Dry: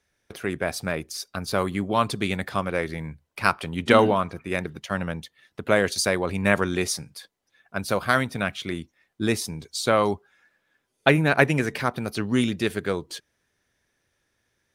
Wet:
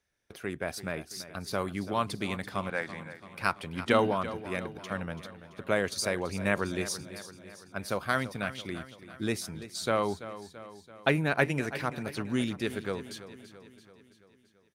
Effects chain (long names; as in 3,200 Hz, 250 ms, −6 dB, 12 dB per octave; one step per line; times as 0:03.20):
0:02.70–0:03.25: loudspeaker in its box 210–8,800 Hz, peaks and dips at 380 Hz −10 dB, 810 Hz +6 dB, 1,600 Hz +8 dB, 7,700 Hz +7 dB
repeating echo 335 ms, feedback 57%, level −14 dB
level −7.5 dB